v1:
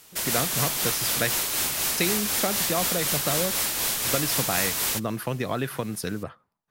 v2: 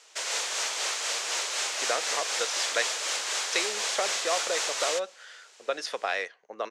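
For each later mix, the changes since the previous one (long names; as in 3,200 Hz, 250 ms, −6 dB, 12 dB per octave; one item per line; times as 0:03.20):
speech: entry +1.55 s
master: add Chebyshev band-pass filter 470–7,100 Hz, order 3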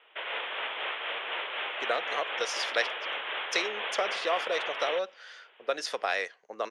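background: add Butterworth low-pass 3,400 Hz 96 dB per octave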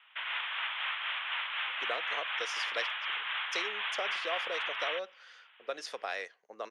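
speech −7.5 dB
background: add high-pass filter 990 Hz 24 dB per octave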